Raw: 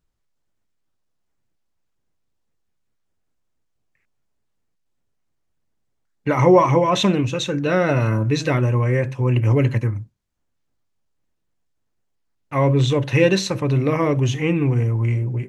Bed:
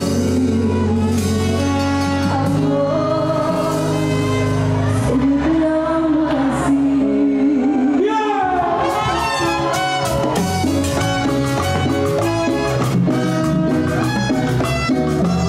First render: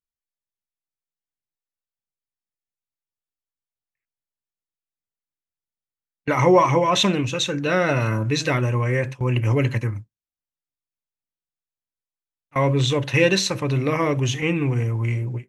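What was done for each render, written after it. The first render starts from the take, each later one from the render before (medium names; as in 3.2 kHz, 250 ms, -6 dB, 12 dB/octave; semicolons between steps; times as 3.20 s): gate with hold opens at -15 dBFS; tilt shelf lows -3.5 dB, about 1.1 kHz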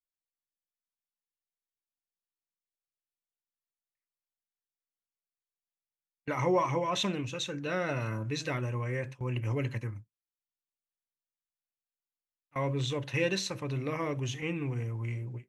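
trim -12 dB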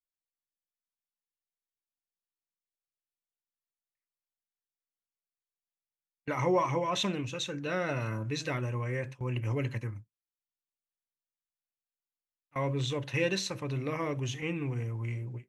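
no audible change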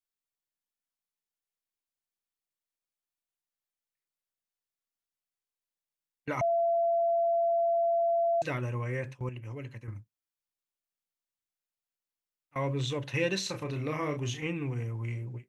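6.41–8.42 s: bleep 678 Hz -23.5 dBFS; 9.29–9.88 s: gain -9 dB; 13.43–14.47 s: doubling 33 ms -6 dB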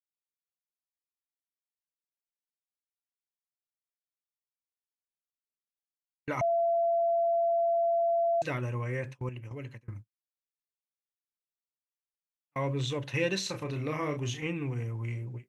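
gate with hold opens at -32 dBFS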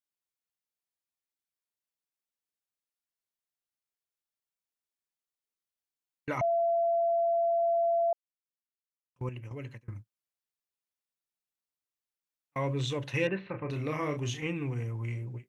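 6.38–7.63 s: distance through air 87 m; 8.13–9.16 s: mute; 13.27–13.70 s: steep low-pass 2.4 kHz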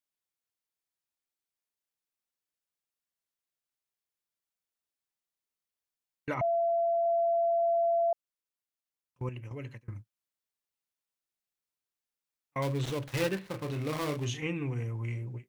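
6.34–7.06 s: distance through air 210 m; 12.62–14.25 s: dead-time distortion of 0.19 ms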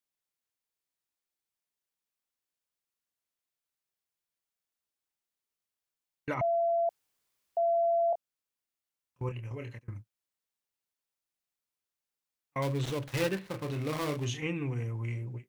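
6.89–7.57 s: room tone; 8.10–9.79 s: doubling 26 ms -5.5 dB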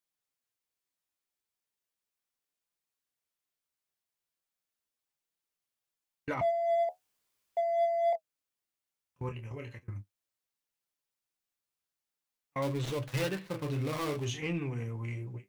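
flange 0.37 Hz, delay 5.7 ms, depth 7.8 ms, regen +52%; in parallel at -5 dB: hard clipper -34.5 dBFS, distortion -8 dB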